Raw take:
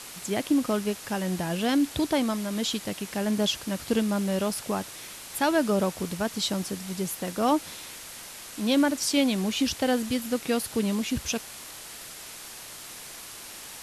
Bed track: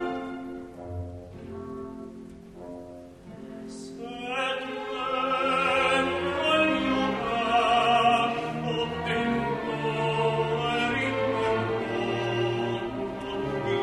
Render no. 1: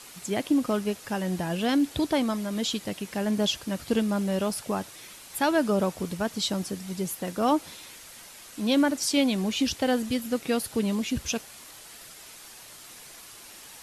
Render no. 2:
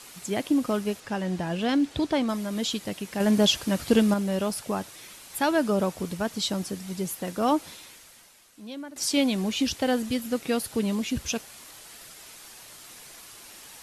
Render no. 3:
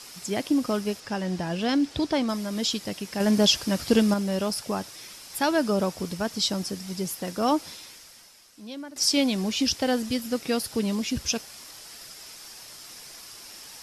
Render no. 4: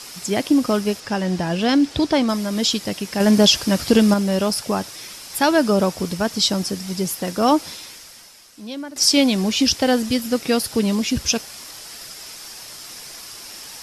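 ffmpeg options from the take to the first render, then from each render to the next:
-af "afftdn=nr=6:nf=-43"
-filter_complex "[0:a]asettb=1/sr,asplit=3[a][b][c];[a]atrim=end=1.004[d];[b]atrim=start=1:end=2.29,asetpts=PTS-STARTPTS,afade=t=in:d=0.004:c=qsin,afade=t=out:st=1.286:d=0.004:c=qsin,adynamicsmooth=sensitivity=1.5:basefreq=7.9k[e];[c]atrim=start=2.286[f];[d][e]acrossfade=d=0.004:c1=hsin:c2=qsin[g];[g][f]acrossfade=d=0.004:c1=qsin:c2=hsin,asettb=1/sr,asplit=3[h][i][j];[h]atrim=end=3.204[k];[i]atrim=start=3.2:end=4.14,asetpts=PTS-STARTPTS,afade=t=in:d=0.004:c=qsin,afade=t=out:st=0.936:d=0.004:c=qsin,acontrast=27[l];[j]atrim=start=4.136[m];[k][l]acrossfade=d=0.004:c1=hsin:c2=qsin[n];[n][m]acrossfade=d=0.004:c1=qsin:c2=hsin,asplit=2[o][p];[o]atrim=end=8.96,asetpts=PTS-STARTPTS,afade=t=out:st=7.7:d=1.26:c=qua:silence=0.141254[q];[p]atrim=start=8.96,asetpts=PTS-STARTPTS,afade=t=in:d=0.004:c=hsin:silence=0.141254[r];[q][r]concat=n=2:v=0:a=1"
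-af "equalizer=f=5.2k:w=3.9:g=10"
-af "volume=7dB,alimiter=limit=-3dB:level=0:latency=1"

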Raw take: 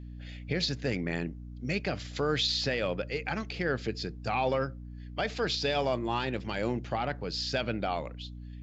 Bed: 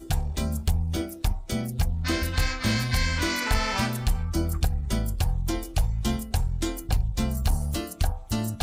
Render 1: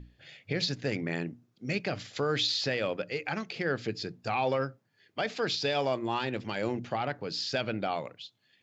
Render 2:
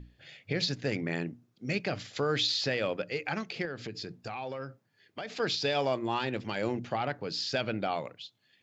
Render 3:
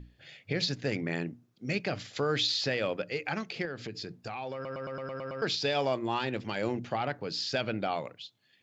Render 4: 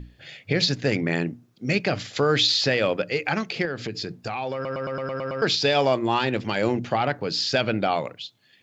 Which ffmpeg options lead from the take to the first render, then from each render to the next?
-af "bandreject=f=60:t=h:w=6,bandreject=f=120:t=h:w=6,bandreject=f=180:t=h:w=6,bandreject=f=240:t=h:w=6,bandreject=f=300:t=h:w=6"
-filter_complex "[0:a]asettb=1/sr,asplit=3[a][b][c];[a]atrim=end=3.654[d];[b]atrim=start=3.65:end=5.4,asetpts=PTS-STARTPTS,afade=t=in:d=0.004:c=qsin,afade=t=out:st=1.746:d=0.004:c=qsin,acompressor=threshold=-35dB:ratio=4:attack=3.2:release=140:knee=1:detection=peak[e];[c]atrim=start=5.396[f];[d][e]acrossfade=d=0.004:c1=hsin:c2=qsin[g];[g][f]acrossfade=d=0.004:c1=qsin:c2=hsin"
-filter_complex "[0:a]asplit=9[a][b][c][d][e][f][g][h][i];[a]atrim=end=4.652[j];[b]atrim=start=4.538:end=4.652[k];[c]atrim=start=4.538:end=4.652[l];[d]atrim=start=4.538:end=4.652[m];[e]atrim=start=4.538:end=4.652[n];[f]atrim=start=4.538:end=4.652[o];[g]atrim=start=4.538:end=4.652[p];[h]atrim=start=4.538:end=4.652[q];[i]atrim=start=5.418[r];[j][k]acrossfade=d=0.004:c1=hsin:c2=hsin[s];[s][l]acrossfade=d=0.004:c1=hsin:c2=hsin[t];[t][m]acrossfade=d=0.004:c1=hsin:c2=hsin[u];[u][n]acrossfade=d=0.004:c1=hsin:c2=hsin[v];[v][o]acrossfade=d=0.004:c1=hsin:c2=hsin[w];[w][p]acrossfade=d=0.004:c1=hsin:c2=hsin[x];[x][q]acrossfade=d=0.004:c1=hsin:c2=hsin[y];[y][r]acrossfade=d=0.004:c1=hsin:c2=hsin"
-af "volume=8.5dB"

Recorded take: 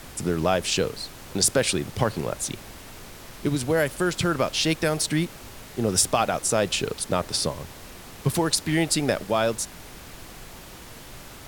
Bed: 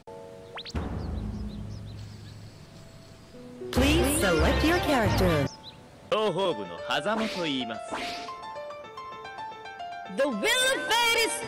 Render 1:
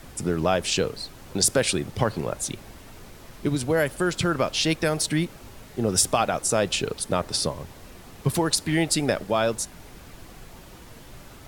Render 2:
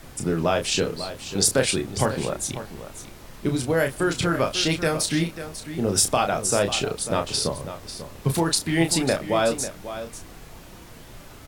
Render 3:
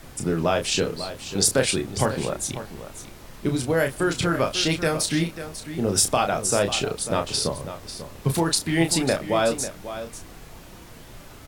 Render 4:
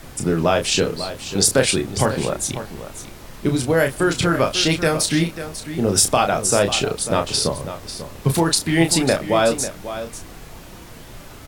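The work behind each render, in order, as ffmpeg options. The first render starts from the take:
-af "afftdn=nr=6:nf=-43"
-filter_complex "[0:a]asplit=2[a][b];[b]adelay=30,volume=-6dB[c];[a][c]amix=inputs=2:normalize=0,asplit=2[d][e];[e]aecho=0:1:544:0.251[f];[d][f]amix=inputs=2:normalize=0"
-af anull
-af "volume=4.5dB,alimiter=limit=-3dB:level=0:latency=1"

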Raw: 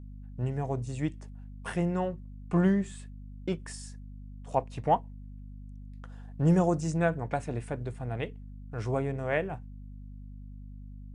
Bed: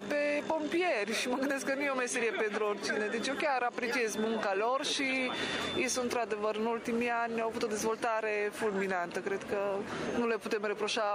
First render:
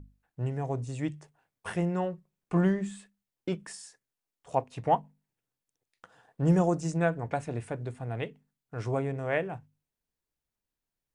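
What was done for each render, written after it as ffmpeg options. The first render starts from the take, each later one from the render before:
-af "bandreject=f=50:t=h:w=6,bandreject=f=100:t=h:w=6,bandreject=f=150:t=h:w=6,bandreject=f=200:t=h:w=6,bandreject=f=250:t=h:w=6"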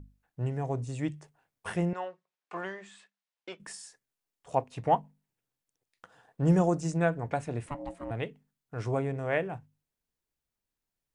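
-filter_complex "[0:a]asettb=1/sr,asplit=3[a][b][c];[a]atrim=end=1.934[d];[b]atrim=start=1.93:end=3.6,asetpts=PTS-STARTPTS,afade=t=in:d=0.004:c=qsin,afade=t=out:st=1.666:d=0.004:c=qsin,highpass=700,lowpass=5.2k[e];[c]atrim=start=3.596[f];[d][e]acrossfade=d=0.004:c1=hsin:c2=qsin[g];[g][f]acrossfade=d=0.004:c1=qsin:c2=hsin,asettb=1/sr,asplit=3[h][i][j];[h]atrim=end=7.664[k];[i]atrim=start=7.66:end=8.11,asetpts=PTS-STARTPTS,afade=t=in:d=0.004:c=qsin,afade=t=out:st=0.446:d=0.004:c=qsin,aeval=exprs='val(0)*sin(2*PI*430*n/s)':c=same[l];[j]atrim=start=8.106[m];[k][l]acrossfade=d=0.004:c1=hsin:c2=qsin[n];[n][m]acrossfade=d=0.004:c1=qsin:c2=hsin"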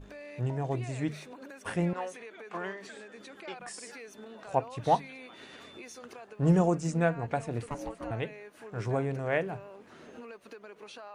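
-filter_complex "[1:a]volume=-15dB[a];[0:a][a]amix=inputs=2:normalize=0"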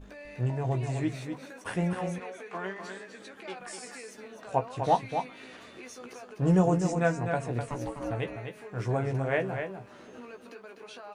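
-filter_complex "[0:a]asplit=2[a][b];[b]adelay=16,volume=-7dB[c];[a][c]amix=inputs=2:normalize=0,asplit=2[d][e];[e]aecho=0:1:251:0.447[f];[d][f]amix=inputs=2:normalize=0"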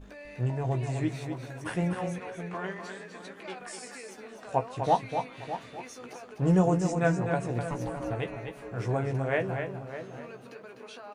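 -filter_complex "[0:a]asplit=2[a][b];[b]adelay=608,lowpass=f=1.8k:p=1,volume=-11dB,asplit=2[c][d];[d]adelay=608,lowpass=f=1.8k:p=1,volume=0.17[e];[a][c][e]amix=inputs=3:normalize=0"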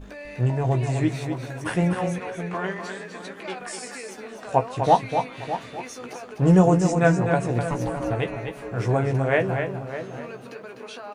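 -af "volume=7dB"

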